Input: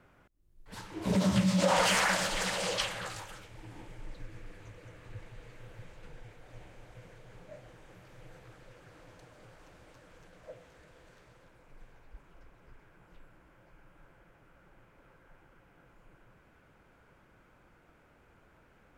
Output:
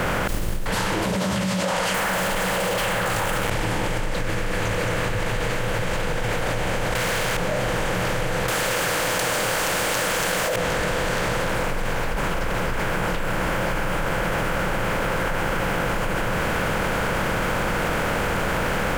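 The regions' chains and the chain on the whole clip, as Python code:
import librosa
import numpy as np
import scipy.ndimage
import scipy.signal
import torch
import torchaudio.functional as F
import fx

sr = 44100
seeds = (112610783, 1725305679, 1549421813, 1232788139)

y = fx.chain(x, sr, fx.leveller(passes=5),
    fx.peak_eq(hz=5000.0, db=-10.5, octaves=1.5), at=(1.94, 3.5))
y = fx.chain(y, sr, fx.tilt_shelf(db=-6.5, hz=770.0),
    fx.leveller(passes=5), at=(6.95, 7.37))
y = fx.chain(y, sr, fx.riaa(side='recording'),
    fx.leveller(passes=1),
    fx.env_flatten(amount_pct=100), at=(8.48, 10.56))
y = fx.bin_compress(y, sr, power=0.6)
y = fx.env_flatten(y, sr, amount_pct=100)
y = y * librosa.db_to_amplitude(-5.5)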